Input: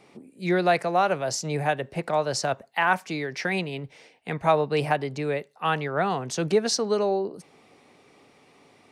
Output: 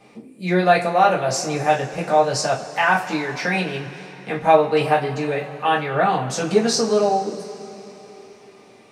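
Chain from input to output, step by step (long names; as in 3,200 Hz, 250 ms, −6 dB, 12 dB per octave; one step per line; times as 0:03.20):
coupled-rooms reverb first 0.25 s, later 3.9 s, from −22 dB, DRR −5.5 dB
level −1 dB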